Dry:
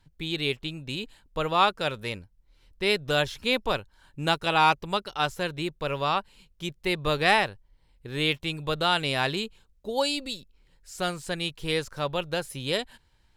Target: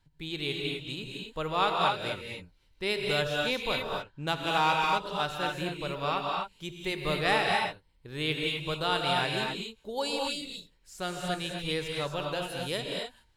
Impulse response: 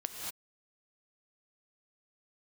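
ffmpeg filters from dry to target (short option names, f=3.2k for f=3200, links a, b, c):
-filter_complex "[0:a]asettb=1/sr,asplit=3[a][b][c];[a]atrim=end=3.744[d];[b]atrim=start=3.74:end=5,asetpts=PTS-STARTPTS,afade=t=in:d=0.004:c=qsin,afade=t=out:st=1.256:d=0.004:c=qsin,adynamicsmooth=sensitivity=3:basefreq=4.5k[e];[c]atrim=start=4.996[f];[d][e]acrossfade=d=0.004:c1=hsin:c2=qsin[g];[g][f]acrossfade=d=0.004:c1=qsin:c2=hsin[h];[1:a]atrim=start_sample=2205,asetrate=40131,aresample=44100[i];[h][i]afir=irnorm=-1:irlink=0,volume=-5dB"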